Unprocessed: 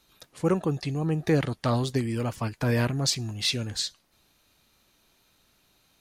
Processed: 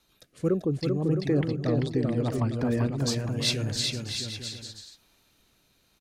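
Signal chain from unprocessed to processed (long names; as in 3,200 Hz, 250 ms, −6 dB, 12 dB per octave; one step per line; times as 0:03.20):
0:00.48–0:03.03: spectral envelope exaggerated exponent 1.5
rotating-speaker cabinet horn 0.75 Hz
bouncing-ball delay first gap 390 ms, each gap 0.7×, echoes 5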